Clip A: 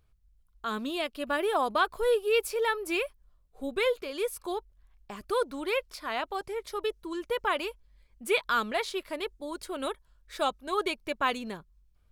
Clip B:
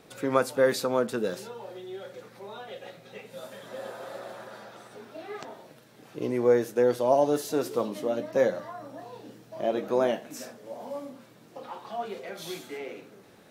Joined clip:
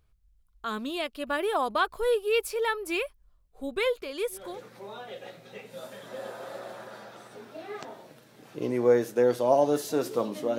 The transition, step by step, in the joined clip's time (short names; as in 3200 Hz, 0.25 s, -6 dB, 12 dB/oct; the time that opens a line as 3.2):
clip A
4.45 switch to clip B from 2.05 s, crossfade 0.36 s equal-power